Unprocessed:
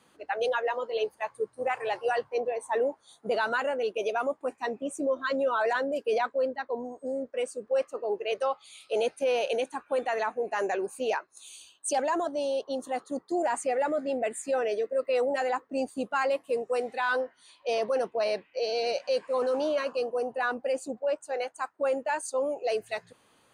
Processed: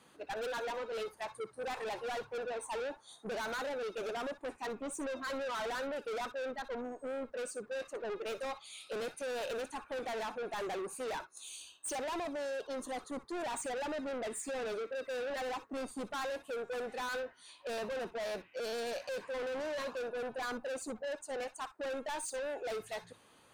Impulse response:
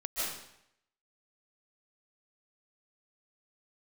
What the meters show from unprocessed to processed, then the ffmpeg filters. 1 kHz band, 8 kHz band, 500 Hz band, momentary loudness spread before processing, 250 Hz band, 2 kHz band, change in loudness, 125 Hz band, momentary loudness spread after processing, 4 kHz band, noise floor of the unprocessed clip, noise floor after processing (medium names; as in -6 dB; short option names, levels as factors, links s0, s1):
-10.0 dB, -3.5 dB, -10.5 dB, 7 LU, -7.5 dB, -8.0 dB, -9.5 dB, no reading, 4 LU, -5.5 dB, -65 dBFS, -63 dBFS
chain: -filter_complex "[0:a]asoftclip=type=tanh:threshold=0.015[s0];[1:a]atrim=start_sample=2205,afade=t=out:st=0.17:d=0.01,atrim=end_sample=7938,asetrate=88200,aresample=44100[s1];[s0][s1]afir=irnorm=-1:irlink=0,volume=2.99"